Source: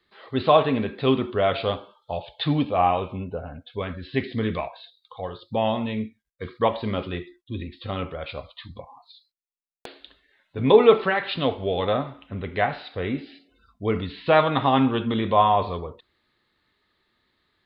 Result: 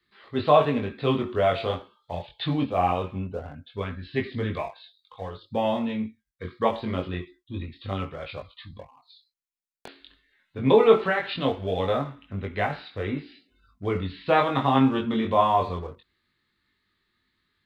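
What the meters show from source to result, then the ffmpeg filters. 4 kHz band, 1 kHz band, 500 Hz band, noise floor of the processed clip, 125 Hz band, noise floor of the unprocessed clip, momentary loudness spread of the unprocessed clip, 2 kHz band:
−3.5 dB, −2.0 dB, −2.0 dB, −76 dBFS, −1.0 dB, −74 dBFS, 17 LU, −2.0 dB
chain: -filter_complex "[0:a]equalizer=frequency=3300:width_type=o:width=0.72:gain=-2.5,flanger=delay=20:depth=2.5:speed=0.23,acrossover=split=400|1000[link_01][link_02][link_03];[link_02]aeval=exprs='sgn(val(0))*max(abs(val(0))-0.00237,0)':channel_layout=same[link_04];[link_01][link_04][link_03]amix=inputs=3:normalize=0,volume=1.5dB"

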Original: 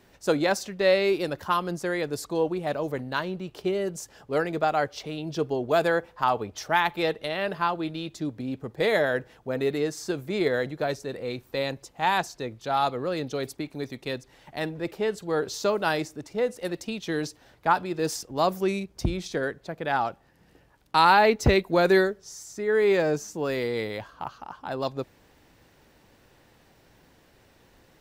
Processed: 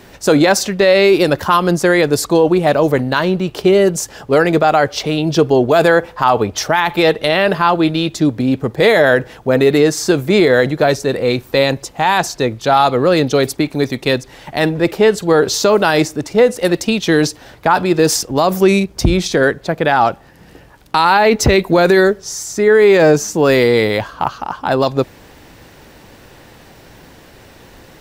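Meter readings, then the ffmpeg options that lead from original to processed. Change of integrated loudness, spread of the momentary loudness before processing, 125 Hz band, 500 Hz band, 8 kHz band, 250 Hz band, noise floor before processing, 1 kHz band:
+13.0 dB, 13 LU, +14.5 dB, +13.5 dB, +17.0 dB, +15.0 dB, −60 dBFS, +10.5 dB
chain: -af "alimiter=level_in=18dB:limit=-1dB:release=50:level=0:latency=1,volume=-1dB"

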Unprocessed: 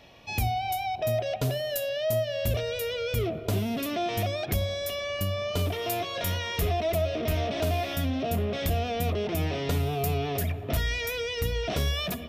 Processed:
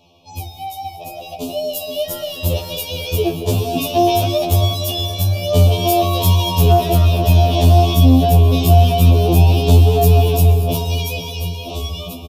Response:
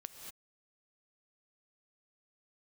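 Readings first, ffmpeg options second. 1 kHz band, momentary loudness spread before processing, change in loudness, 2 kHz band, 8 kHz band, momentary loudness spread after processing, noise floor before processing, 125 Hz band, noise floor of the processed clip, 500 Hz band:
+12.5 dB, 3 LU, +14.0 dB, +2.5 dB, +11.0 dB, 15 LU, −38 dBFS, +17.0 dB, −34 dBFS, +9.5 dB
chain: -filter_complex "[0:a]dynaudnorm=framelen=350:gausssize=11:maxgain=13dB,asuperstop=centerf=1700:order=8:qfactor=1.2,acontrast=39,asplit=2[link_01][link_02];[link_02]adelay=474,lowpass=frequency=2800:poles=1,volume=-10dB,asplit=2[link_03][link_04];[link_04]adelay=474,lowpass=frequency=2800:poles=1,volume=0.47,asplit=2[link_05][link_06];[link_06]adelay=474,lowpass=frequency=2800:poles=1,volume=0.47,asplit=2[link_07][link_08];[link_08]adelay=474,lowpass=frequency=2800:poles=1,volume=0.47,asplit=2[link_09][link_10];[link_10]adelay=474,lowpass=frequency=2800:poles=1,volume=0.47[link_11];[link_01][link_03][link_05][link_07][link_09][link_11]amix=inputs=6:normalize=0,asplit=2[link_12][link_13];[1:a]atrim=start_sample=2205[link_14];[link_13][link_14]afir=irnorm=-1:irlink=0,volume=4dB[link_15];[link_12][link_15]amix=inputs=2:normalize=0,afftfilt=real='re*2*eq(mod(b,4),0)':imag='im*2*eq(mod(b,4),0)':win_size=2048:overlap=0.75,volume=-8dB"

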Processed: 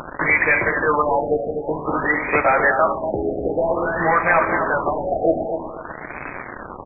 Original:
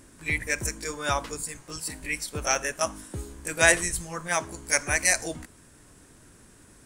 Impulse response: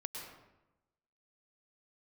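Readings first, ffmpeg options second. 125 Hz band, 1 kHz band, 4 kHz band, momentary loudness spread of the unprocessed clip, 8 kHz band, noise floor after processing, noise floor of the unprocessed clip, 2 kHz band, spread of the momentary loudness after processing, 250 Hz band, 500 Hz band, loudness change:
+5.0 dB, +13.5 dB, below −35 dB, 14 LU, below −40 dB, −35 dBFS, −55 dBFS, +7.5 dB, 16 LU, +12.0 dB, +12.5 dB, +7.5 dB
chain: -filter_complex "[0:a]asplit=2[link_01][link_02];[link_02]highpass=frequency=720:poles=1,volume=26dB,asoftclip=type=tanh:threshold=-2dB[link_03];[link_01][link_03]amix=inputs=2:normalize=0,lowpass=frequency=2500:poles=1,volume=-6dB,equalizer=frequency=920:width=0.42:gain=9,acompressor=threshold=-18dB:ratio=1.5,alimiter=limit=-14dB:level=0:latency=1:release=355,bandreject=frequency=88.68:width_type=h:width=4,bandreject=frequency=177.36:width_type=h:width=4,bandreject=frequency=266.04:width_type=h:width=4,aresample=8000,acrusher=bits=4:mix=0:aa=0.000001,aresample=44100,flanger=delay=6.6:depth=6:regen=84:speed=0.49:shape=sinusoidal,aecho=1:1:246|492|738:0.447|0.112|0.0279,asplit=2[link_04][link_05];[1:a]atrim=start_sample=2205,asetrate=52920,aresample=44100[link_06];[link_05][link_06]afir=irnorm=-1:irlink=0,volume=-3dB[link_07];[link_04][link_07]amix=inputs=2:normalize=0,afftfilt=real='re*lt(b*sr/1024,770*pow(2600/770,0.5+0.5*sin(2*PI*0.52*pts/sr)))':imag='im*lt(b*sr/1024,770*pow(2600/770,0.5+0.5*sin(2*PI*0.52*pts/sr)))':win_size=1024:overlap=0.75,volume=8dB"

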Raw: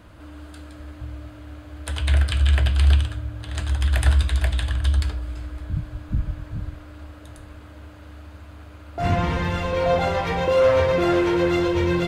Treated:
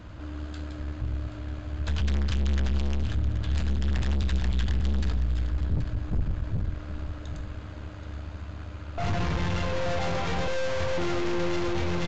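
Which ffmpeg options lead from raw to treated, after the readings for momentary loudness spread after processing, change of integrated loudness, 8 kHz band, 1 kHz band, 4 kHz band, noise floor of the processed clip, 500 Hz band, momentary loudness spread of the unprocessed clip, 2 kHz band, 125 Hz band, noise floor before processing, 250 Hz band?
11 LU, −8.0 dB, −5.5 dB, −8.0 dB, −6.0 dB, −40 dBFS, −10.5 dB, 21 LU, −6.5 dB, −5.0 dB, −43 dBFS, −6.0 dB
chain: -filter_complex "[0:a]aeval=exprs='(tanh(39.8*val(0)+0.55)-tanh(0.55))/39.8':channel_layout=same,bass=frequency=250:gain=5,treble=frequency=4000:gain=1,asplit=2[link_01][link_02];[link_02]aecho=0:1:778:0.251[link_03];[link_01][link_03]amix=inputs=2:normalize=0,aresample=16000,aresample=44100,volume=3dB"

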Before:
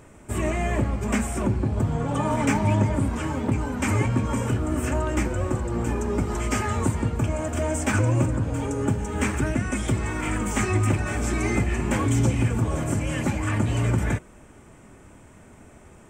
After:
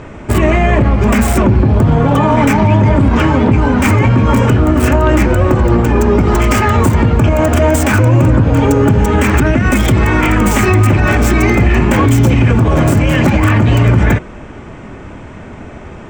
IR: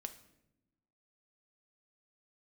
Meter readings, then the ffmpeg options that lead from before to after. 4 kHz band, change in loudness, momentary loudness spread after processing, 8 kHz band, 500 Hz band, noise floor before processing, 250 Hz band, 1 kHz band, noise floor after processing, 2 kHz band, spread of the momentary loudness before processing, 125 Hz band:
+13.5 dB, +14.0 dB, 2 LU, +8.0 dB, +15.0 dB, −49 dBFS, +14.0 dB, +14.5 dB, −31 dBFS, +14.5 dB, 5 LU, +14.0 dB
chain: -filter_complex "[0:a]acrossover=split=5300[link_01][link_02];[link_02]acrusher=bits=3:dc=4:mix=0:aa=0.000001[link_03];[link_01][link_03]amix=inputs=2:normalize=0,alimiter=level_in=19.5dB:limit=-1dB:release=50:level=0:latency=1,volume=-1dB"

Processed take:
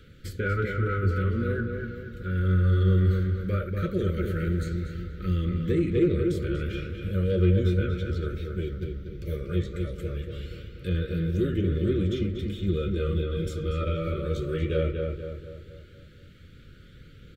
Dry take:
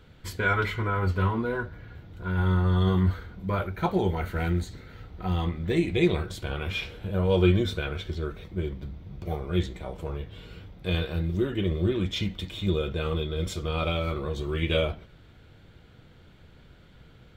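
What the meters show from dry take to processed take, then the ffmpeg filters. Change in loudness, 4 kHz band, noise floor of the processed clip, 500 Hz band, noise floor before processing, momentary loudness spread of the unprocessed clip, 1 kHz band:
+0.5 dB, −8.5 dB, −50 dBFS, 0.0 dB, −53 dBFS, 14 LU, −6.5 dB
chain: -filter_complex "[0:a]highshelf=frequency=4900:gain=4,acrossover=split=1500[link_01][link_02];[link_02]acompressor=threshold=-46dB:ratio=6[link_03];[link_01][link_03]amix=inputs=2:normalize=0,aphaser=in_gain=1:out_gain=1:delay=2.2:decay=0.2:speed=0.17:type=triangular,asoftclip=type=tanh:threshold=-16dB,asuperstop=centerf=840:order=12:qfactor=1.3,asplit=2[link_04][link_05];[link_05]adelay=239,lowpass=frequency=2500:poles=1,volume=-4dB,asplit=2[link_06][link_07];[link_07]adelay=239,lowpass=frequency=2500:poles=1,volume=0.49,asplit=2[link_08][link_09];[link_09]adelay=239,lowpass=frequency=2500:poles=1,volume=0.49,asplit=2[link_10][link_11];[link_11]adelay=239,lowpass=frequency=2500:poles=1,volume=0.49,asplit=2[link_12][link_13];[link_13]adelay=239,lowpass=frequency=2500:poles=1,volume=0.49,asplit=2[link_14][link_15];[link_15]adelay=239,lowpass=frequency=2500:poles=1,volume=0.49[link_16];[link_06][link_08][link_10][link_12][link_14][link_16]amix=inputs=6:normalize=0[link_17];[link_04][link_17]amix=inputs=2:normalize=0"

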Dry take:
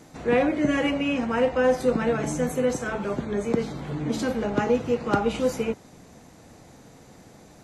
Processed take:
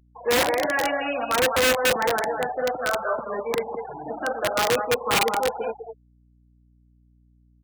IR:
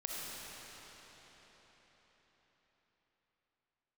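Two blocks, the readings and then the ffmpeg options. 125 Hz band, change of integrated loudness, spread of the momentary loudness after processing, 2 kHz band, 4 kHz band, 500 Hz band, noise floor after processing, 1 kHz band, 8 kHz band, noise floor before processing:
−9.0 dB, +1.5 dB, 12 LU, +6.5 dB, +10.0 dB, 0.0 dB, −59 dBFS, +6.0 dB, +8.5 dB, −51 dBFS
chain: -filter_complex "[0:a]afftfilt=real='re*pow(10,6/40*sin(2*PI*(0.93*log(max(b,1)*sr/1024/100)/log(2)-(-0.63)*(pts-256)/sr)))':imag='im*pow(10,6/40*sin(2*PI*(0.93*log(max(b,1)*sr/1024/100)/log(2)-(-0.63)*(pts-256)/sr)))':win_size=1024:overlap=0.75,acrossover=split=570 2300:gain=0.0794 1 0.0631[link_01][link_02][link_03];[link_01][link_02][link_03]amix=inputs=3:normalize=0,asplit=2[link_04][link_05];[link_05]aecho=0:1:204:0.447[link_06];[link_04][link_06]amix=inputs=2:normalize=0,acontrast=63,asoftclip=type=hard:threshold=-18.5dB,acrossover=split=5000[link_07][link_08];[link_08]acompressor=threshold=-60dB:ratio=4:attack=1:release=60[link_09];[link_07][link_09]amix=inputs=2:normalize=0,afftfilt=real='re*gte(hypot(re,im),0.0447)':imag='im*gte(hypot(re,im),0.0447)':win_size=1024:overlap=0.75,equalizer=frequency=720:width_type=o:width=1.1:gain=3.5,aeval=exprs='(mod(5.96*val(0)+1,2)-1)/5.96':channel_layout=same,highpass=47,aeval=exprs='val(0)+0.00141*(sin(2*PI*60*n/s)+sin(2*PI*2*60*n/s)/2+sin(2*PI*3*60*n/s)/3+sin(2*PI*4*60*n/s)/4+sin(2*PI*5*60*n/s)/5)':channel_layout=same"

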